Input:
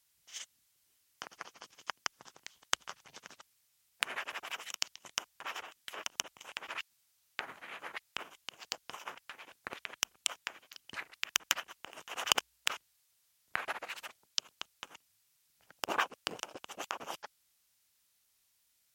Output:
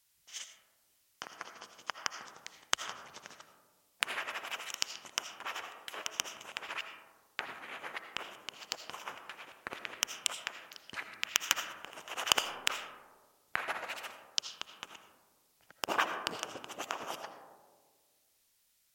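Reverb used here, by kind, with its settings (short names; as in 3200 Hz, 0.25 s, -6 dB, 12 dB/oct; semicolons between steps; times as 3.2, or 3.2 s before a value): digital reverb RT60 1.6 s, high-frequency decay 0.25×, pre-delay 40 ms, DRR 7 dB; gain +1 dB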